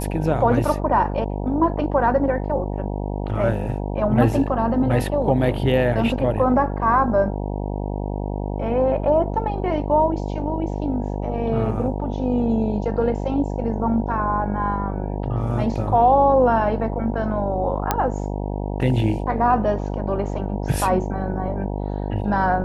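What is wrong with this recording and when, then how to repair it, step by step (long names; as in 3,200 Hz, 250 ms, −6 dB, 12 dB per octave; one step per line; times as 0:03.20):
mains buzz 50 Hz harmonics 19 −26 dBFS
0:17.91: click −4 dBFS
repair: click removal
hum removal 50 Hz, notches 19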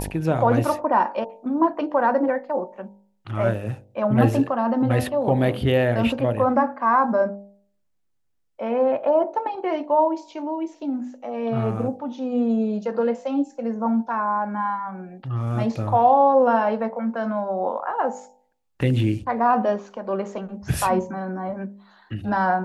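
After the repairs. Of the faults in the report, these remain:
none of them is left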